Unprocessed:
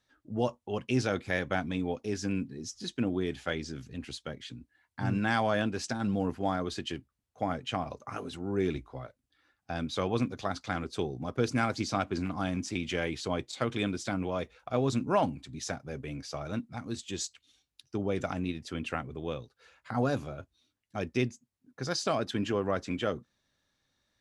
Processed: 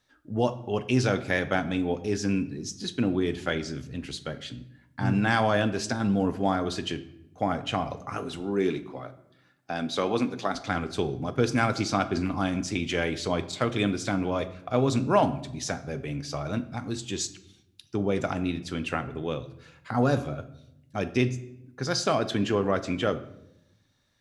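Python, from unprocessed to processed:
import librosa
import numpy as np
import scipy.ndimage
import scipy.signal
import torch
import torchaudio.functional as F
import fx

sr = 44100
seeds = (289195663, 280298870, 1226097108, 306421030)

y = fx.highpass(x, sr, hz=190.0, slope=12, at=(8.4, 10.55))
y = fx.room_shoebox(y, sr, seeds[0], volume_m3=240.0, walls='mixed', distance_m=0.3)
y = F.gain(torch.from_numpy(y), 4.5).numpy()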